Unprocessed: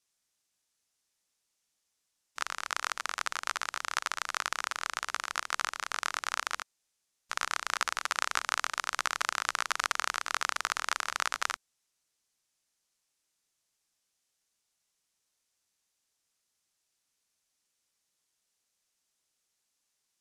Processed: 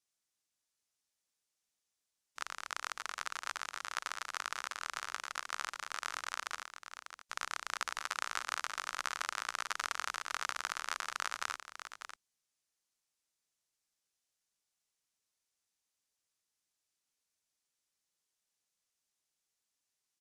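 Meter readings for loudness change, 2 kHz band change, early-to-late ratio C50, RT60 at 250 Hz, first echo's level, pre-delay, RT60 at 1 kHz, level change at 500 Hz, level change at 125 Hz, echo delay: -7.0 dB, -6.5 dB, no reverb, no reverb, -9.5 dB, no reverb, no reverb, -6.5 dB, no reading, 595 ms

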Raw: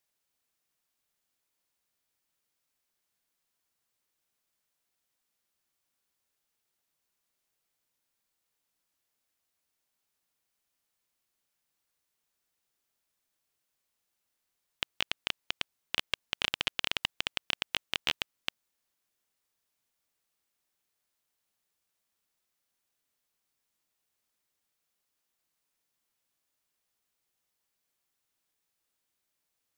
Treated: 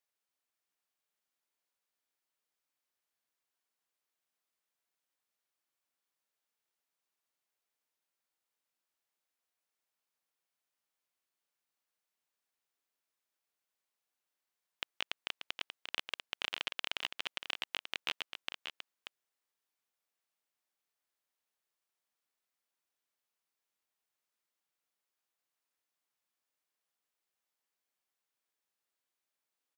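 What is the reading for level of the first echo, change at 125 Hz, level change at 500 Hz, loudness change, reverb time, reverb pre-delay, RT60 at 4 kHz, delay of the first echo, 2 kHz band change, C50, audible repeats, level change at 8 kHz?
-7.5 dB, -14.5 dB, -6.0 dB, -6.0 dB, no reverb, no reverb, no reverb, 585 ms, -5.0 dB, no reverb, 1, -8.0 dB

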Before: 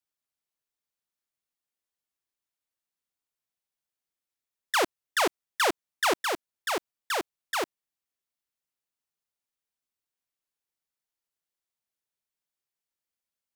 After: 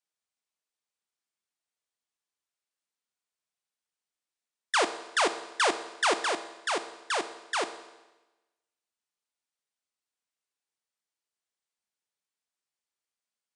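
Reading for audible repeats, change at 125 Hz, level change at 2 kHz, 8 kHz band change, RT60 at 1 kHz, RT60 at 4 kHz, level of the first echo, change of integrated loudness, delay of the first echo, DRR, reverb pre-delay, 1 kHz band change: no echo, no reading, 0.0 dB, 0.0 dB, 1.1 s, 1.1 s, no echo, 0.0 dB, no echo, 9.5 dB, 4 ms, 0.0 dB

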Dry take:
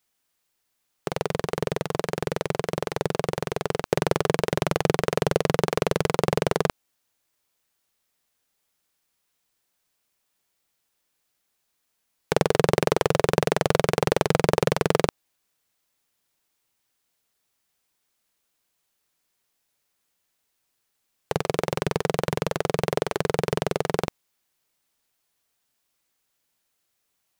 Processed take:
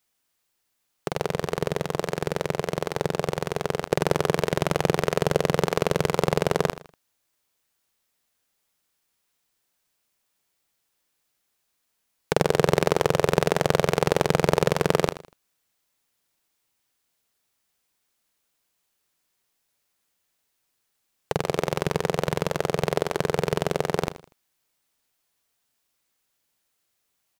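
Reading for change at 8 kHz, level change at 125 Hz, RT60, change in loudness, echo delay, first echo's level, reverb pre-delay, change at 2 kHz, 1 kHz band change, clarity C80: 0.0 dB, +0.5 dB, no reverb, 0.0 dB, 80 ms, -14.0 dB, no reverb, 0.0 dB, 0.0 dB, no reverb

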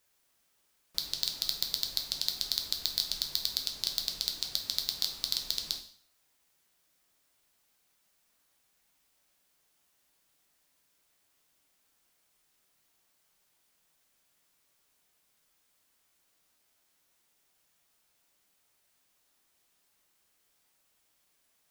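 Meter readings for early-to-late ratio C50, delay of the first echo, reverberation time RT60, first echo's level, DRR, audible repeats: 9.5 dB, no echo, 0.55 s, no echo, 3.0 dB, no echo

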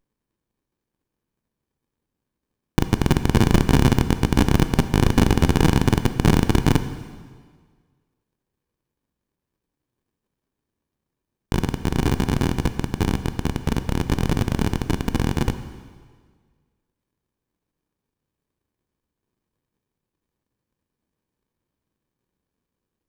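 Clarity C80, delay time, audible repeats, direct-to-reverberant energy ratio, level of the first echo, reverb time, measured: 12.5 dB, no echo, no echo, 10.0 dB, no echo, 1.7 s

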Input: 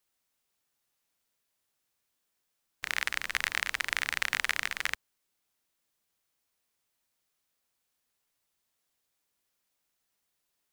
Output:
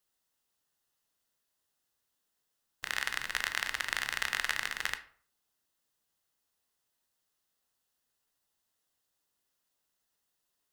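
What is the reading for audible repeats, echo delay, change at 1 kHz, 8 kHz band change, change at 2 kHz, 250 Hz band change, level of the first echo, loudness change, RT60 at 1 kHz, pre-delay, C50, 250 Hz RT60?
no echo, no echo, -1.0 dB, -1.5 dB, -2.5 dB, -1.0 dB, no echo, -2.5 dB, 0.50 s, 14 ms, 13.5 dB, 0.50 s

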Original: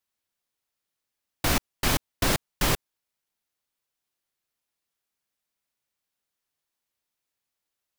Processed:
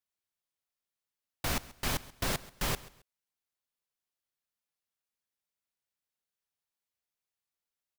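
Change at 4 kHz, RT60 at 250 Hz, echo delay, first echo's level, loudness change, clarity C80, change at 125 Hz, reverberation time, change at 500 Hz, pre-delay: -8.0 dB, no reverb, 134 ms, -19.5 dB, -8.0 dB, no reverb, -8.0 dB, no reverb, -8.5 dB, no reverb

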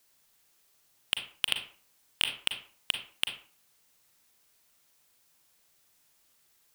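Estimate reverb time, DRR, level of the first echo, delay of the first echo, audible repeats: 0.45 s, 5.0 dB, no echo, no echo, no echo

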